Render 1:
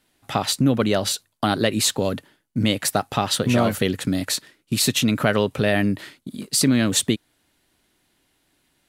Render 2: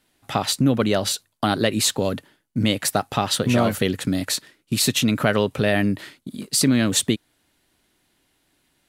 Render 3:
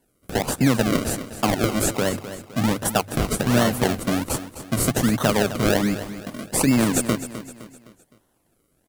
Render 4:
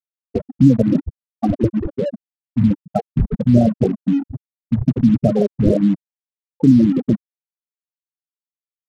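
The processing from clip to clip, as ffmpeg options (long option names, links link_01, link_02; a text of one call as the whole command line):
ffmpeg -i in.wav -af anull out.wav
ffmpeg -i in.wav -filter_complex "[0:a]bandreject=frequency=50:width_type=h:width=6,bandreject=frequency=100:width_type=h:width=6,bandreject=frequency=150:width_type=h:width=6,acrossover=split=110|6400[link_01][link_02][link_03];[link_02]acrusher=samples=35:mix=1:aa=0.000001:lfo=1:lforange=35:lforate=1.3[link_04];[link_01][link_04][link_03]amix=inputs=3:normalize=0,aecho=1:1:257|514|771|1028:0.237|0.102|0.0438|0.0189" out.wav
ffmpeg -i in.wav -filter_complex "[0:a]afftfilt=real='re*gte(hypot(re,im),0.447)':imag='im*gte(hypot(re,im),0.447)':win_size=1024:overlap=0.75,tiltshelf=frequency=1200:gain=9.5,asplit=2[link_01][link_02];[link_02]acrusher=bits=3:mix=0:aa=0.5,volume=-9dB[link_03];[link_01][link_03]amix=inputs=2:normalize=0,volume=-3dB" out.wav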